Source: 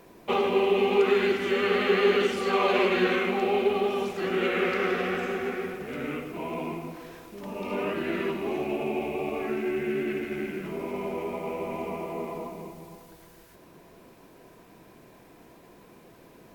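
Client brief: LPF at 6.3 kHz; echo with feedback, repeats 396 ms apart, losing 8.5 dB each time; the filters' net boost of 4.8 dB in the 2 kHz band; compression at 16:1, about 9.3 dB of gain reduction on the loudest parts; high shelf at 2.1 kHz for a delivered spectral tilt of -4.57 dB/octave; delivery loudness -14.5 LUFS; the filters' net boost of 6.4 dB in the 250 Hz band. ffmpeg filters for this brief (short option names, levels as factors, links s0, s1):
-af "lowpass=6300,equalizer=f=250:t=o:g=9,equalizer=f=2000:t=o:g=9,highshelf=f=2100:g=-5.5,acompressor=threshold=0.0708:ratio=16,aecho=1:1:396|792|1188|1584:0.376|0.143|0.0543|0.0206,volume=4.73"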